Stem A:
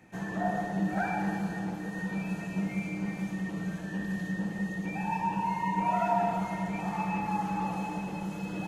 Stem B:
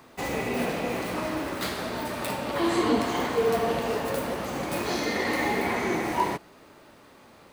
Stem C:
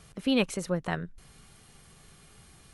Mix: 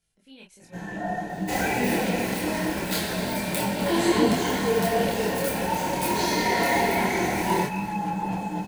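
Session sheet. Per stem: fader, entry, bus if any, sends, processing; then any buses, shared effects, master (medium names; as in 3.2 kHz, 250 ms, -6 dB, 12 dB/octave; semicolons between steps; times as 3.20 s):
0.0 dB, 0.60 s, no send, no echo send, none
-0.5 dB, 1.30 s, no send, echo send -14.5 dB, treble shelf 5.5 kHz +8.5 dB
-20.0 dB, 0.00 s, no send, no echo send, treble shelf 2.1 kHz +8.5 dB; chorus 1.3 Hz, delay 18 ms, depth 4.4 ms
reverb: none
echo: delay 260 ms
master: level rider gain up to 5 dB; Butterworth band-stop 1.2 kHz, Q 4.6; chorus voices 6, 1 Hz, delay 26 ms, depth 3 ms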